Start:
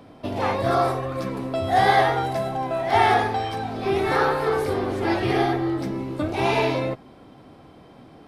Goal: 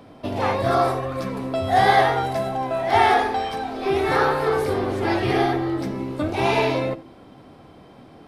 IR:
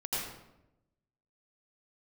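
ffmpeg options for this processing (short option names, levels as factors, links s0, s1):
-filter_complex "[0:a]bandreject=f=54.9:t=h:w=4,bandreject=f=109.8:t=h:w=4,bandreject=f=164.7:t=h:w=4,bandreject=f=219.6:t=h:w=4,bandreject=f=274.5:t=h:w=4,bandreject=f=329.4:t=h:w=4,asplit=2[s0][s1];[1:a]atrim=start_sample=2205,atrim=end_sample=3528[s2];[s1][s2]afir=irnorm=-1:irlink=0,volume=0.282[s3];[s0][s3]amix=inputs=2:normalize=0"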